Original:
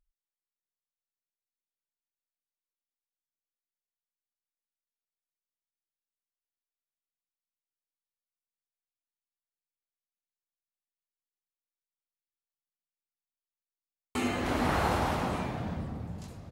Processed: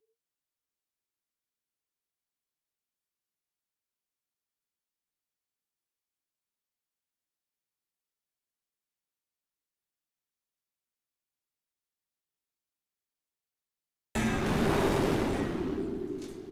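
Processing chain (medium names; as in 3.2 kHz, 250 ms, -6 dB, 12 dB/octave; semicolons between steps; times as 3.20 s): valve stage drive 25 dB, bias 0.45; frequency shift -470 Hz; trim +4.5 dB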